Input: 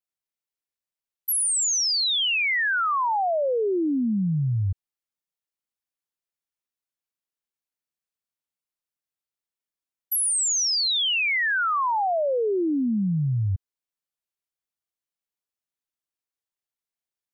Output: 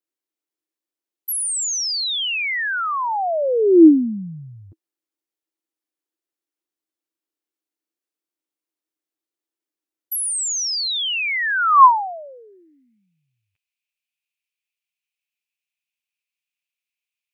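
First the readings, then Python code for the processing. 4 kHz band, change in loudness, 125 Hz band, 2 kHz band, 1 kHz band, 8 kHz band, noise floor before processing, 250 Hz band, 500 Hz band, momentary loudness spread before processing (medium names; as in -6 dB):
0.0 dB, +5.0 dB, -15.0 dB, +1.0 dB, +7.5 dB, 0.0 dB, under -85 dBFS, +7.5 dB, +4.5 dB, 6 LU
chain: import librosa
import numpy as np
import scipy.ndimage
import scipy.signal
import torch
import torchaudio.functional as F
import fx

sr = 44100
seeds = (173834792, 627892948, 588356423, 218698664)

y = fx.filter_sweep_highpass(x, sr, from_hz=320.0, to_hz=2500.0, start_s=10.09, end_s=13.12, q=7.7)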